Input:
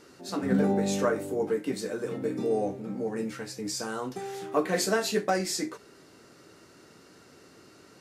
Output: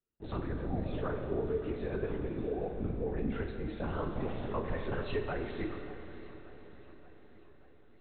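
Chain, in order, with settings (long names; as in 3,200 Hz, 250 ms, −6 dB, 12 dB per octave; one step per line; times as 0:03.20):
noise gate −46 dBFS, range −40 dB
low-shelf EQ 150 Hz +11.5 dB
downward compressor, threshold −31 dBFS, peak gain reduction 14 dB
multi-voice chorus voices 4, 0.93 Hz, delay 11 ms, depth 3 ms
linear-prediction vocoder at 8 kHz whisper
feedback delay with all-pass diffusion 622 ms, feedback 49%, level −15 dB
four-comb reverb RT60 2.6 s, combs from 29 ms, DRR 6 dB
feedback echo with a swinging delay time 581 ms, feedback 65%, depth 94 cents, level −20.5 dB
level +1.5 dB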